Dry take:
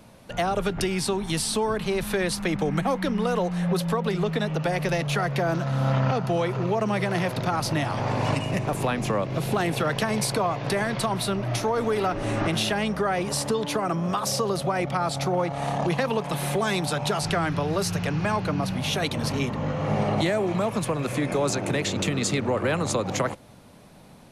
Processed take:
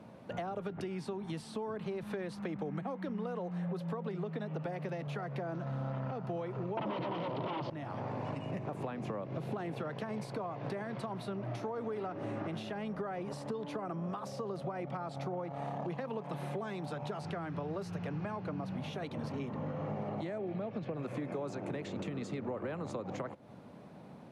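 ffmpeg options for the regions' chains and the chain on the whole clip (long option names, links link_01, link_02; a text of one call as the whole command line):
ffmpeg -i in.wav -filter_complex "[0:a]asettb=1/sr,asplit=3[link_01][link_02][link_03];[link_01]atrim=end=6.774[link_04];[link_02]atrim=start=6.77:end=7.7,asetpts=PTS-STARTPTS,afade=type=in:duration=0.004:curve=qsin,afade=type=out:start_time=0.926:duration=0.004:curve=qsin,aeval=exprs='0.211*sin(PI/2*3.98*val(0)/0.211)':channel_layout=same,highpass=110,equalizer=frequency=140:width_type=q:width=4:gain=6,equalizer=frequency=310:width_type=q:width=4:gain=8,equalizer=frequency=560:width_type=q:width=4:gain=7,equalizer=frequency=970:width_type=q:width=4:gain=10,equalizer=frequency=1600:width_type=q:width=4:gain=-5,equalizer=frequency=3100:width_type=q:width=4:gain=9,lowpass=frequency=4700:width=0.5412,lowpass=frequency=4700:width=1.3066[link_05];[link_03]atrim=start=7.696[link_06];[link_04][link_05]acrossfade=duration=0.004:curve1=hsin:curve2=qsin[link_07];[link_07][link_06]acrossfade=duration=0.004:curve1=qsin:curve2=hsin,asettb=1/sr,asplit=3[link_08][link_09][link_10];[link_08]atrim=end=20.384[link_11];[link_09]atrim=start=20.38:end=20.97,asetpts=PTS-STARTPTS,afade=type=in:duration=0.004:curve=qsin,afade=type=out:start_time=0.586:duration=0.004:curve=qsin,lowpass=frequency=5100:width=0.5412,lowpass=frequency=5100:width=1.3066,equalizer=frequency=1000:width=5.2:gain=-13,bandreject=frequency=1300:width=16[link_12];[link_10]atrim=start=20.966[link_13];[link_11][link_12]acrossfade=duration=0.004:curve1=hsin:curve2=qsin[link_14];[link_14][link_13]acrossfade=duration=0.004:curve1=qsin:curve2=hsin,highpass=130,acompressor=threshold=-35dB:ratio=6,lowpass=frequency=1000:poles=1" out.wav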